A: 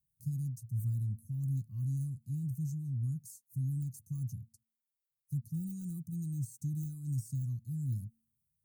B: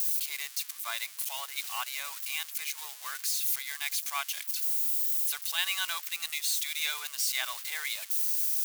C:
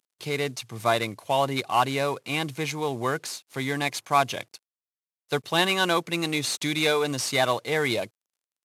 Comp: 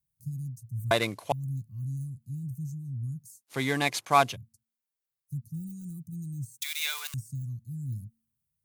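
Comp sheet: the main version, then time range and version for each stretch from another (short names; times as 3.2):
A
0.91–1.32 from C
3.47–4.32 from C, crossfade 0.10 s
6.62–7.14 from B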